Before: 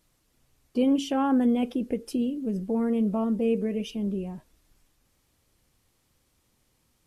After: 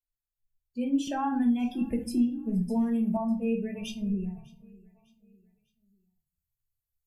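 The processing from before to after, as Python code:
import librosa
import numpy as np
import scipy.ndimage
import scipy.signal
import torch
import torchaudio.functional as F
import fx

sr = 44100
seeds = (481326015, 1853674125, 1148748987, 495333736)

y = fx.bin_expand(x, sr, power=2.0)
y = fx.peak_eq(y, sr, hz=8900.0, db=4.5, octaves=1.8)
y = y + 0.6 * np.pad(y, (int(1.2 * sr / 1000.0), 0))[:len(y)]
y = fx.rider(y, sr, range_db=10, speed_s=0.5)
y = fx.echo_feedback(y, sr, ms=601, feedback_pct=41, wet_db=-24)
y = fx.room_shoebox(y, sr, seeds[0], volume_m3=240.0, walls='furnished', distance_m=1.5)
y = fx.band_squash(y, sr, depth_pct=70, at=(1.07, 3.17))
y = y * 10.0 ** (-4.0 / 20.0)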